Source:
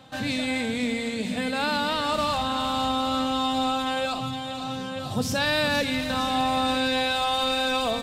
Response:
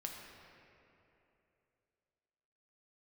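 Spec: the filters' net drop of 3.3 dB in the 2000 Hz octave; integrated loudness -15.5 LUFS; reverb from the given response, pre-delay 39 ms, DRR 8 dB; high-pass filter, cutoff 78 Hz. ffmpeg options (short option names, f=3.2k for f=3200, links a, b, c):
-filter_complex "[0:a]highpass=78,equalizer=f=2k:t=o:g=-4.5,asplit=2[a][b];[1:a]atrim=start_sample=2205,adelay=39[c];[b][c]afir=irnorm=-1:irlink=0,volume=-6.5dB[d];[a][d]amix=inputs=2:normalize=0,volume=10dB"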